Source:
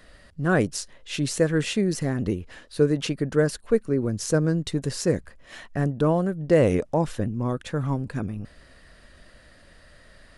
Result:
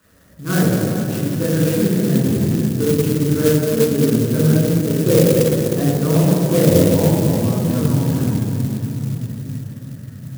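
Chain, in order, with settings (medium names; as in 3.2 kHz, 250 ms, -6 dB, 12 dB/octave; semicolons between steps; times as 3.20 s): 4.83–5.80 s: peaking EQ 560 Hz +10.5 dB 1.6 oct; reverberation RT60 3.5 s, pre-delay 3 ms, DRR -6.5 dB; sampling jitter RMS 0.089 ms; trim -11.5 dB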